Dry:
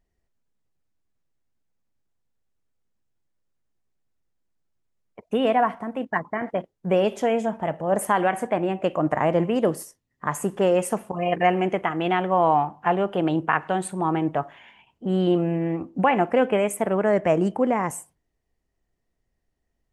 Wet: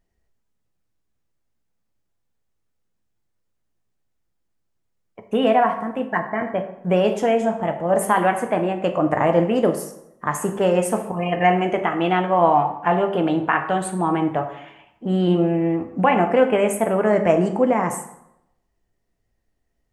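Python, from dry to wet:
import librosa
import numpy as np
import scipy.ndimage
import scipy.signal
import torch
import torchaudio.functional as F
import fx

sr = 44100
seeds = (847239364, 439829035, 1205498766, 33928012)

y = fx.rev_plate(x, sr, seeds[0], rt60_s=0.81, hf_ratio=0.65, predelay_ms=0, drr_db=5.0)
y = y * librosa.db_to_amplitude(2.0)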